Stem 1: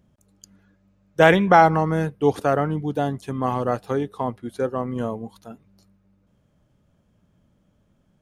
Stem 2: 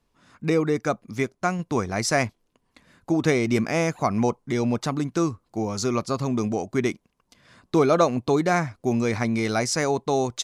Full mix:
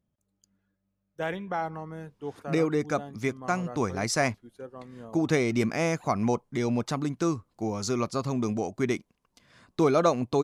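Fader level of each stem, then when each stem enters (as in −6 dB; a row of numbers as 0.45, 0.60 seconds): −17.5, −3.5 decibels; 0.00, 2.05 seconds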